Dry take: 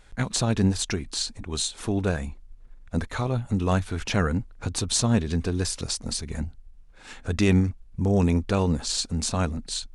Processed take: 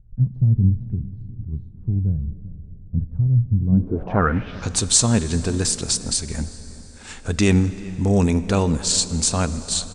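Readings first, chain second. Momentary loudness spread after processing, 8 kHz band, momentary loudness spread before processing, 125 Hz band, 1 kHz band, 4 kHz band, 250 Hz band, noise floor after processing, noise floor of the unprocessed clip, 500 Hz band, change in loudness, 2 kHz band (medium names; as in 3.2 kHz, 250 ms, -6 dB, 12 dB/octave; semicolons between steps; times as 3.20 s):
15 LU, +8.0 dB, 10 LU, +6.5 dB, +3.5 dB, +3.5 dB, +3.5 dB, -41 dBFS, -50 dBFS, +2.5 dB, +5.5 dB, +2.0 dB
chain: echo from a far wall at 67 m, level -21 dB; plate-style reverb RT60 5 s, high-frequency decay 0.75×, DRR 13.5 dB; low-pass sweep 130 Hz -> 8.2 kHz, 3.64–4.73 s; trim +3.5 dB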